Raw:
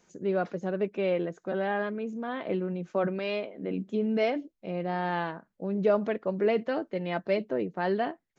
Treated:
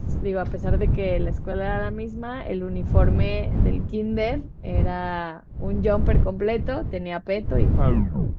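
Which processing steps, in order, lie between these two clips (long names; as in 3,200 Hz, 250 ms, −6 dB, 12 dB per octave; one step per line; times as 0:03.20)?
turntable brake at the end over 0.71 s
wind on the microphone 100 Hz −25 dBFS
level +2 dB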